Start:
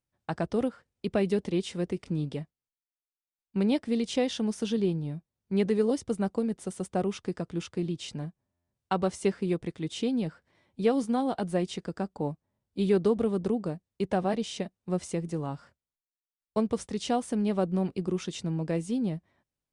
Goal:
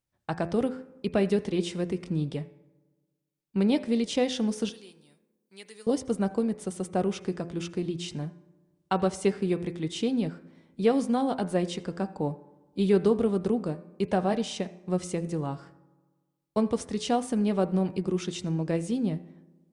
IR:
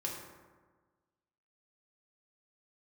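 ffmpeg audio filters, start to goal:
-filter_complex "[0:a]asettb=1/sr,asplit=3[link_01][link_02][link_03];[link_01]atrim=end=4.694[link_04];[link_02]atrim=start=4.69:end=5.87,asetpts=PTS-STARTPTS,afade=type=in:duration=0.004:curve=qsin,afade=type=out:start_time=1.176:duration=0.004:curve=qsin,aderivative[link_05];[link_03]atrim=start=5.866[link_06];[link_04][link_05]acrossfade=duration=0.004:curve1=hsin:curve2=qsin[link_07];[link_07][link_06]acrossfade=duration=0.004:curve1=qsin:curve2=hsin,bandreject=frequency=85.55:width_type=h:width=4,bandreject=frequency=171.1:width_type=h:width=4,bandreject=frequency=256.65:width_type=h:width=4,bandreject=frequency=342.2:width_type=h:width=4,bandreject=frequency=427.75:width_type=h:width=4,bandreject=frequency=513.3:width_type=h:width=4,bandreject=frequency=598.85:width_type=h:width=4,bandreject=frequency=684.4:width_type=h:width=4,bandreject=frequency=769.95:width_type=h:width=4,bandreject=frequency=855.5:width_type=h:width=4,bandreject=frequency=941.05:width_type=h:width=4,bandreject=frequency=1026.6:width_type=h:width=4,bandreject=frequency=1112.15:width_type=h:width=4,bandreject=frequency=1197.7:width_type=h:width=4,bandreject=frequency=1283.25:width_type=h:width=4,bandreject=frequency=1368.8:width_type=h:width=4,bandreject=frequency=1454.35:width_type=h:width=4,bandreject=frequency=1539.9:width_type=h:width=4,bandreject=frequency=1625.45:width_type=h:width=4,bandreject=frequency=1711:width_type=h:width=4,bandreject=frequency=1796.55:width_type=h:width=4,bandreject=frequency=1882.1:width_type=h:width=4,bandreject=frequency=1967.65:width_type=h:width=4,bandreject=frequency=2053.2:width_type=h:width=4,bandreject=frequency=2138.75:width_type=h:width=4,bandreject=frequency=2224.3:width_type=h:width=4,bandreject=frequency=2309.85:width_type=h:width=4,bandreject=frequency=2395.4:width_type=h:width=4,bandreject=frequency=2480.95:width_type=h:width=4,bandreject=frequency=2566.5:width_type=h:width=4,bandreject=frequency=2652.05:width_type=h:width=4,asplit=2[link_08][link_09];[1:a]atrim=start_sample=2205,adelay=81[link_10];[link_09][link_10]afir=irnorm=-1:irlink=0,volume=-22.5dB[link_11];[link_08][link_11]amix=inputs=2:normalize=0,volume=2dB"

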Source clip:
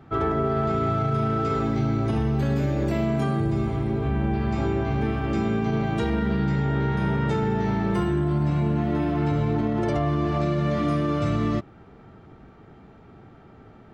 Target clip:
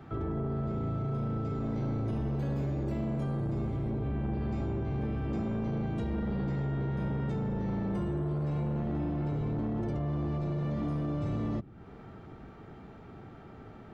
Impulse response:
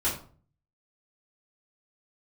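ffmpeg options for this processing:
-filter_complex "[0:a]acrossover=split=320[link_01][link_02];[link_01]asoftclip=type=tanh:threshold=-30dB[link_03];[link_02]acompressor=threshold=-47dB:ratio=4[link_04];[link_03][link_04]amix=inputs=2:normalize=0"

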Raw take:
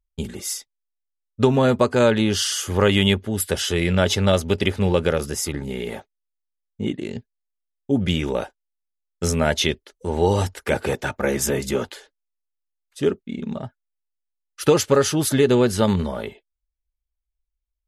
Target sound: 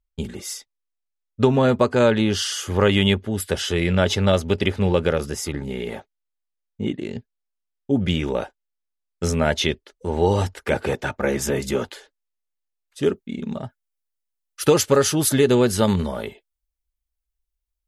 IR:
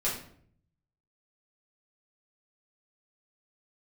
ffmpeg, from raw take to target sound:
-af "asetnsamples=nb_out_samples=441:pad=0,asendcmd='11.56 highshelf g -2.5;13.02 highshelf g 5.5',highshelf=frequency=7300:gain=-8"

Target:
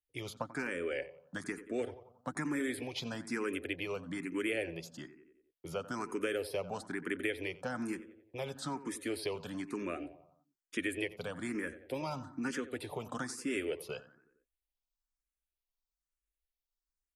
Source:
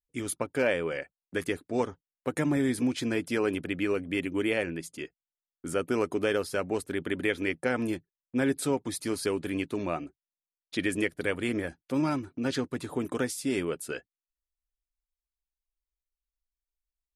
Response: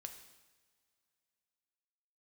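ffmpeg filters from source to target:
-filter_complex "[0:a]acrossover=split=91|530|5400[link_01][link_02][link_03][link_04];[link_01]acompressor=threshold=-59dB:ratio=4[link_05];[link_02]acompressor=threshold=-36dB:ratio=4[link_06];[link_03]acompressor=threshold=-34dB:ratio=4[link_07];[link_04]acompressor=threshold=-46dB:ratio=4[link_08];[link_05][link_06][link_07][link_08]amix=inputs=4:normalize=0,asplit=2[link_09][link_10];[link_10]adelay=90,lowpass=frequency=2100:poles=1,volume=-14dB,asplit=2[link_11][link_12];[link_12]adelay=90,lowpass=frequency=2100:poles=1,volume=0.53,asplit=2[link_13][link_14];[link_14]adelay=90,lowpass=frequency=2100:poles=1,volume=0.53,asplit=2[link_15][link_16];[link_16]adelay=90,lowpass=frequency=2100:poles=1,volume=0.53,asplit=2[link_17][link_18];[link_18]adelay=90,lowpass=frequency=2100:poles=1,volume=0.53[link_19];[link_11][link_13][link_15][link_17][link_19]amix=inputs=5:normalize=0[link_20];[link_09][link_20]amix=inputs=2:normalize=0,asplit=2[link_21][link_22];[link_22]afreqshift=1.1[link_23];[link_21][link_23]amix=inputs=2:normalize=1"

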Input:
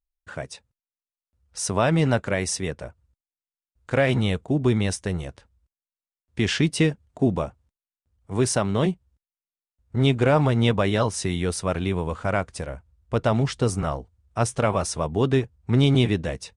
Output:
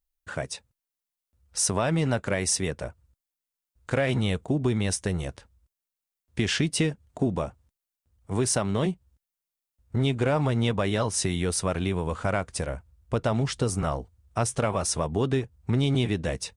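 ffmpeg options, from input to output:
ffmpeg -i in.wav -filter_complex "[0:a]asplit=2[link_01][link_02];[link_02]asoftclip=type=tanh:threshold=-15.5dB,volume=-11dB[link_03];[link_01][link_03]amix=inputs=2:normalize=0,acompressor=threshold=-24dB:ratio=2.5,highshelf=frequency=8100:gain=7" out.wav

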